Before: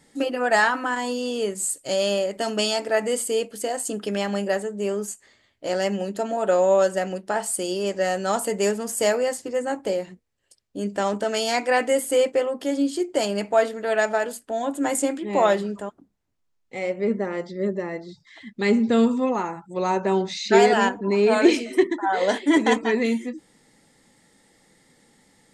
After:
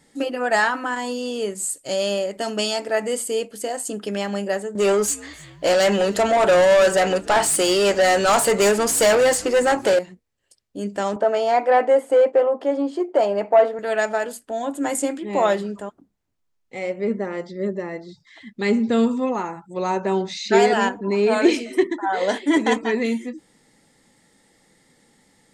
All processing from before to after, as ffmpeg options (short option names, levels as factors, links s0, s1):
-filter_complex "[0:a]asettb=1/sr,asplit=3[s0][s1][s2];[s0]atrim=end=4.754[s3];[s1]atrim=start=4.75:end=9.99,asetpts=PTS-STARTPTS,afade=t=in:d=0.004:c=qsin,afade=t=out:st=5.236:d=0.004:c=qsin,asplit=2[s4][s5];[s5]highpass=f=720:p=1,volume=14.1,asoftclip=type=tanh:threshold=0.376[s6];[s4][s6]amix=inputs=2:normalize=0,lowpass=f=6200:p=1,volume=0.501,asplit=5[s7][s8][s9][s10][s11];[s8]adelay=301,afreqshift=-130,volume=0.0668[s12];[s9]adelay=602,afreqshift=-260,volume=0.038[s13];[s10]adelay=903,afreqshift=-390,volume=0.0216[s14];[s11]adelay=1204,afreqshift=-520,volume=0.0124[s15];[s7][s12][s13][s14][s15]amix=inputs=5:normalize=0,atrim=end_sample=231084[s16];[s2]atrim=start=9.986[s17];[s3][s16]acrossfade=d=0.004:c1=hsin:c2=qsin[s18];[s18][s17]acrossfade=d=0.004:c1=qsin:c2=hsin,asettb=1/sr,asplit=3[s19][s20][s21];[s19]atrim=end=11.164[s22];[s20]atrim=start=11.16:end=13.79,asetpts=PTS-STARTPTS,afade=t=in:d=0.004:c=qsin,afade=t=out:st=2.626:d=0.004:c=qsin,aeval=exprs='0.422*sin(PI/2*1.78*val(0)/0.422)':c=same,bandpass=f=710:t=q:w=1.3[s23];[s21]atrim=start=13.786[s24];[s22][s23]acrossfade=d=0.004:c1=hsin:c2=qsin[s25];[s25][s24]acrossfade=d=0.004:c1=qsin:c2=hsin"